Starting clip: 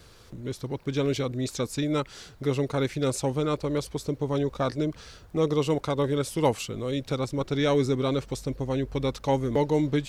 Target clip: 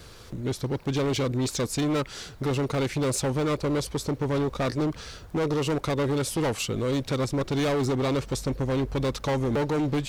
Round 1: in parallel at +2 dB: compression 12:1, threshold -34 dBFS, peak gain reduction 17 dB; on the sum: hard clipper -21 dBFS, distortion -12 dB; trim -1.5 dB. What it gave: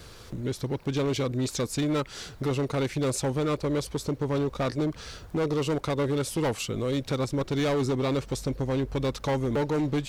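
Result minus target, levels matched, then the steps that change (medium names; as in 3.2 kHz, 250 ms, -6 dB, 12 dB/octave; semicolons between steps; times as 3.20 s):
compression: peak gain reduction +8.5 dB
change: compression 12:1, threshold -24.5 dBFS, peak gain reduction 8.5 dB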